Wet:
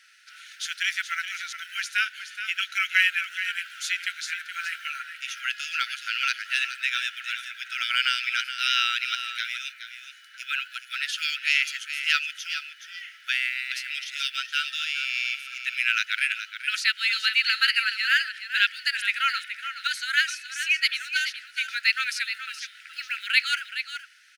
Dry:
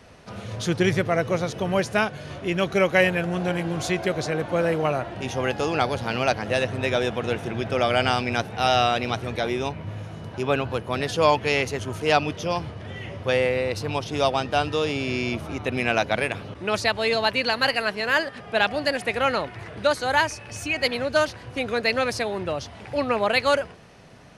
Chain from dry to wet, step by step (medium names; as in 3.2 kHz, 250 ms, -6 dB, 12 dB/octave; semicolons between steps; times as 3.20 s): dynamic bell 2.8 kHz, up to +5 dB, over -39 dBFS, Q 2; on a send: delay 422 ms -10 dB; on the sum: companded quantiser 8-bit; brick-wall FIR high-pass 1.3 kHz